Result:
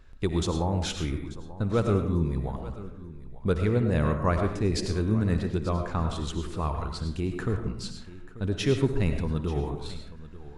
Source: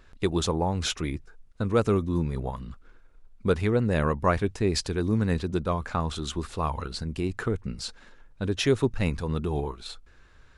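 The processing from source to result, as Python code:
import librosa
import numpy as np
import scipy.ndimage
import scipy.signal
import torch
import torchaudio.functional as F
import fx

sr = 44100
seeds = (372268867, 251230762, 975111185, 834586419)

y = fx.low_shelf(x, sr, hz=200.0, db=7.5)
y = fx.echo_multitap(y, sr, ms=(59, 887), db=(-17.0, -17.0))
y = fx.rev_freeverb(y, sr, rt60_s=0.68, hf_ratio=0.4, predelay_ms=60, drr_db=5.5)
y = y * 10.0 ** (-4.5 / 20.0)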